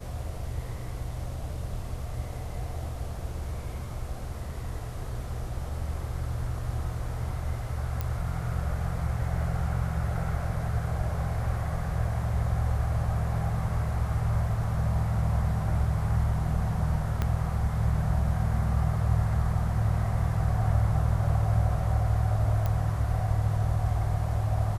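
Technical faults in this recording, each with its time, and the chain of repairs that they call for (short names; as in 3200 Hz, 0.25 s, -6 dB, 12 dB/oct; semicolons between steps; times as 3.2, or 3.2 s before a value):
8.01 pop -17 dBFS
17.22 pop -15 dBFS
22.66 pop -17 dBFS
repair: de-click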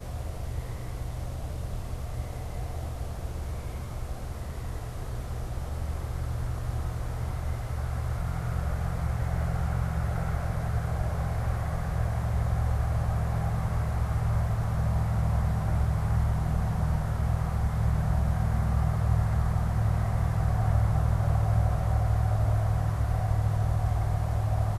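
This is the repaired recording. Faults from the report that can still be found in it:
17.22 pop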